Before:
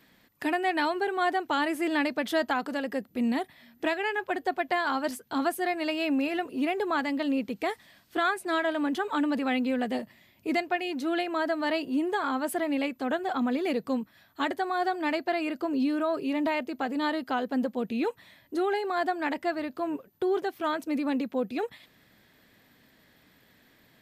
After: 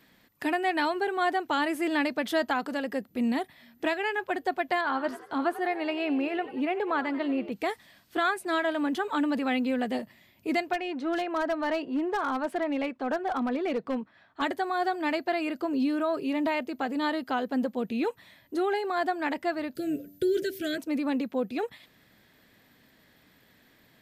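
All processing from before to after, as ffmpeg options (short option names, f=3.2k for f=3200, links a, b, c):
-filter_complex "[0:a]asettb=1/sr,asplit=3[a][b][c];[a]atrim=end=4.814[d];[b]atrim=start=4.81:end=7.52,asetpts=PTS-STARTPTS,afade=t=in:d=0.004:c=qsin,afade=t=out:st=2.706:d=0.004:c=qsin,bass=f=250:g=-3,treble=f=4k:g=-14,asplit=6[e][f][g][h][i][j];[f]adelay=91,afreqshift=74,volume=-15dB[k];[g]adelay=182,afreqshift=148,volume=-21.2dB[l];[h]adelay=273,afreqshift=222,volume=-27.4dB[m];[i]adelay=364,afreqshift=296,volume=-33.6dB[n];[j]adelay=455,afreqshift=370,volume=-39.8dB[o];[e][k][l][m][n][o]amix=inputs=6:normalize=0,atrim=end_sample=119511[p];[c]atrim=start=7.516[q];[d][p]acrossfade=d=0.004:c1=hsin:c2=qsin[r];[r][q]acrossfade=d=0.004:c1=qsin:c2=hsin,asettb=1/sr,asplit=3[s][t][u];[s]atrim=end=10.734[v];[t]atrim=start=10.73:end=14.42,asetpts=PTS-STARTPTS,afade=t=in:d=0.004:c=qsin,afade=t=out:st=3.686:d=0.004:c=qsin,adynamicsmooth=sensitivity=7:basefreq=7.3k,asplit=2[w][x];[x]highpass=f=720:p=1,volume=10dB,asoftclip=type=tanh:threshold=-16.5dB[y];[w][y]amix=inputs=2:normalize=0,lowpass=f=1.2k:p=1,volume=-6dB,aeval=exprs='0.075*(abs(mod(val(0)/0.075+3,4)-2)-1)':c=same[z];[u]atrim=start=14.416[aa];[v][z]acrossfade=d=0.004:c1=hsin:c2=qsin[ab];[ab][aa]acrossfade=d=0.004:c1=qsin:c2=hsin,asettb=1/sr,asplit=3[ac][ad][ae];[ac]atrim=end=19.754[af];[ad]atrim=start=19.75:end=20.78,asetpts=PTS-STARTPTS,afade=t=in:d=0.004:c=qsin,afade=t=out:st=1.026:d=0.004:c=qsin,asuperstop=centerf=950:order=12:qfactor=1.2,bass=f=250:g=10,treble=f=4k:g=11,bandreject=f=96.43:t=h:w=4,bandreject=f=192.86:t=h:w=4,bandreject=f=289.29:t=h:w=4,bandreject=f=385.72:t=h:w=4,bandreject=f=482.15:t=h:w=4,bandreject=f=578.58:t=h:w=4,bandreject=f=675.01:t=h:w=4,bandreject=f=771.44:t=h:w=4,bandreject=f=867.87:t=h:w=4,bandreject=f=964.3:t=h:w=4,bandreject=f=1.06073k:t=h:w=4,bandreject=f=1.15716k:t=h:w=4,bandreject=f=1.25359k:t=h:w=4,bandreject=f=1.35002k:t=h:w=4[ag];[ae]atrim=start=20.776[ah];[af][ag]acrossfade=d=0.004:c1=hsin:c2=qsin[ai];[ai][ah]acrossfade=d=0.004:c1=qsin:c2=hsin"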